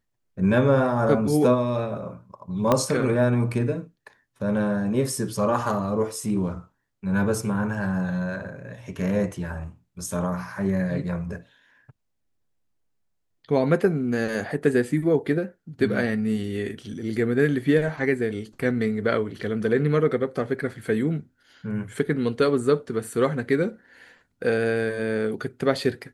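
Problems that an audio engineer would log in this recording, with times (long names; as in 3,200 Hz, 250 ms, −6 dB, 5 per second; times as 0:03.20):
0:02.72: click −7 dBFS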